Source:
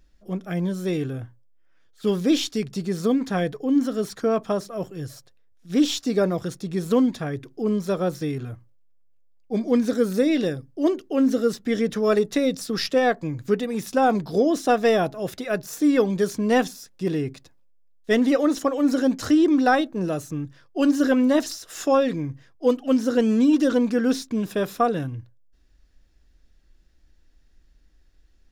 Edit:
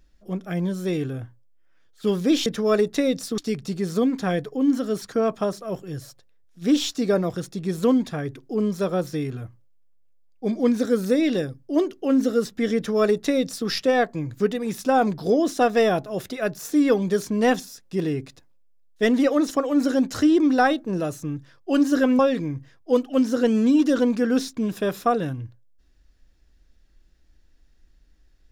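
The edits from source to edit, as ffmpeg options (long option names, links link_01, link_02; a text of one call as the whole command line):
ffmpeg -i in.wav -filter_complex "[0:a]asplit=4[link_01][link_02][link_03][link_04];[link_01]atrim=end=2.462[link_05];[link_02]atrim=start=11.838:end=12.762[link_06];[link_03]atrim=start=2.458:end=21.272[link_07];[link_04]atrim=start=21.928[link_08];[link_05][link_06]acrossfade=duration=0.004:curve1=hsin:curve2=hsin[link_09];[link_09][link_07]acrossfade=duration=0.004:curve1=hsin:curve2=hsin[link_10];[link_10][link_08]acrossfade=duration=0.004:curve1=hsin:curve2=hsin" out.wav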